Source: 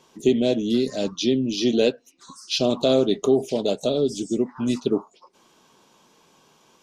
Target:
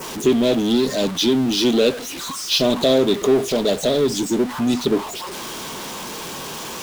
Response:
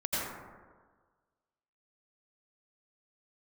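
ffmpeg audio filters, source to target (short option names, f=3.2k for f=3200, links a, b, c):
-filter_complex "[0:a]aeval=exprs='val(0)+0.5*0.0316*sgn(val(0))':c=same,adynamicequalizer=threshold=0.00891:dfrequency=3600:dqfactor=2.8:tfrequency=3600:tqfactor=2.8:attack=5:release=100:ratio=0.375:range=2:mode=boostabove:tftype=bell,asplit=2[a][b];[b]volume=23dB,asoftclip=hard,volume=-23dB,volume=-4dB[c];[a][c]amix=inputs=2:normalize=0"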